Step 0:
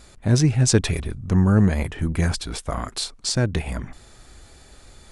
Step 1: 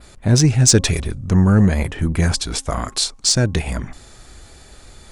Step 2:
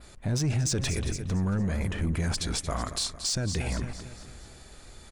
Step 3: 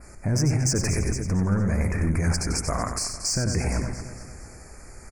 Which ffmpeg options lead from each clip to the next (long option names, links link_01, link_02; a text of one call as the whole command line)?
ffmpeg -i in.wav -af "bandreject=frequency=270.7:width_type=h:width=4,bandreject=frequency=541.4:width_type=h:width=4,bandreject=frequency=812.1:width_type=h:width=4,bandreject=frequency=1082.8:width_type=h:width=4,adynamicequalizer=threshold=0.00891:dfrequency=6400:dqfactor=1.1:tfrequency=6400:tqfactor=1.1:attack=5:release=100:ratio=0.375:range=3.5:mode=boostabove:tftype=bell,acontrast=38,volume=-1dB" out.wav
ffmpeg -i in.wav -filter_complex "[0:a]aecho=1:1:227|454|681|908|1135:0.178|0.0889|0.0445|0.0222|0.0111,asplit=2[link_01][link_02];[link_02]volume=16.5dB,asoftclip=hard,volume=-16.5dB,volume=-7dB[link_03];[link_01][link_03]amix=inputs=2:normalize=0,alimiter=limit=-12dB:level=0:latency=1:release=23,volume=-9dB" out.wav
ffmpeg -i in.wav -filter_complex "[0:a]asuperstop=centerf=3400:order=8:qfactor=1.4,asplit=2[link_01][link_02];[link_02]adelay=93.29,volume=-6dB,highshelf=frequency=4000:gain=-2.1[link_03];[link_01][link_03]amix=inputs=2:normalize=0,volume=4dB" out.wav